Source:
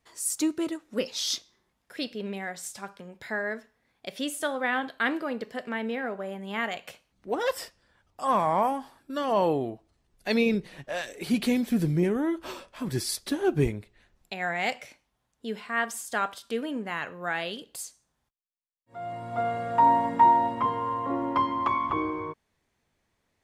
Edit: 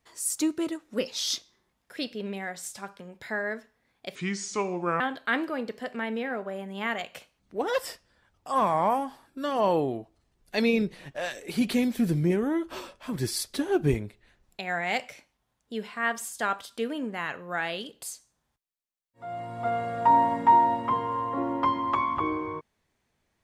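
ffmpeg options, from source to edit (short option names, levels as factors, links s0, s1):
-filter_complex "[0:a]asplit=3[s0][s1][s2];[s0]atrim=end=4.154[s3];[s1]atrim=start=4.15:end=4.73,asetpts=PTS-STARTPTS,asetrate=29988,aresample=44100[s4];[s2]atrim=start=4.726[s5];[s3][s4]acrossfade=d=0.004:c1=hsin:c2=hsin[s6];[s6][s5]acrossfade=d=0.004:c1=hsin:c2=hsin"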